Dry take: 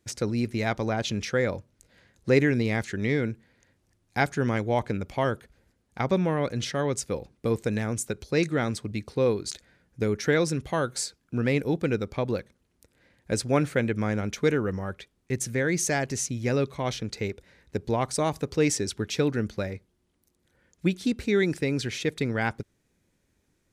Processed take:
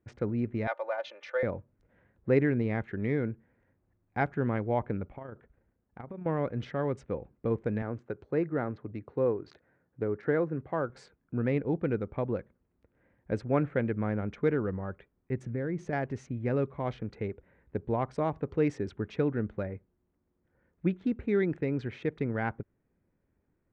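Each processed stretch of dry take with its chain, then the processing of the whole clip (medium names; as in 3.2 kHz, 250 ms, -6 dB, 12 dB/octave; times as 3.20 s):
0.67–1.43 s: Chebyshev band-pass 500–6500 Hz, order 4 + peaking EQ 4.7 kHz +3 dB 0.84 oct + comb 3.4 ms, depth 74%
5.08–6.26 s: AM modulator 28 Hz, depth 30% + compression 10:1, threshold -34 dBFS
7.82–10.90 s: low-pass that closes with the level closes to 2.3 kHz, closed at -22.5 dBFS + cabinet simulation 120–7900 Hz, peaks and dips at 200 Hz -7 dB, 2.3 kHz -4 dB, 3.3 kHz -6 dB, 4.7 kHz +6 dB
15.43–15.93 s: tilt shelf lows +4 dB, about 650 Hz + compression 4:1, threshold -25 dBFS
whole clip: local Wiener filter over 9 samples; low-pass 1.7 kHz 12 dB/octave; trim -3.5 dB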